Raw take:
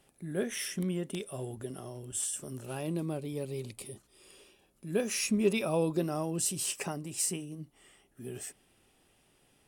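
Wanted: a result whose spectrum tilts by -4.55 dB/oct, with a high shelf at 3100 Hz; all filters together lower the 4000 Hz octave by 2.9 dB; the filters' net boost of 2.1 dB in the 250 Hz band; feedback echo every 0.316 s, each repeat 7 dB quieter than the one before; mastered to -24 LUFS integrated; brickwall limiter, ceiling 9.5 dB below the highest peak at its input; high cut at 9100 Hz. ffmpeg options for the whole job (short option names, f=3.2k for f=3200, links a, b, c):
-af "lowpass=9.1k,equalizer=f=250:t=o:g=3,highshelf=f=3.1k:g=3.5,equalizer=f=4k:t=o:g=-7.5,alimiter=limit=-23.5dB:level=0:latency=1,aecho=1:1:316|632|948|1264|1580:0.447|0.201|0.0905|0.0407|0.0183,volume=10.5dB"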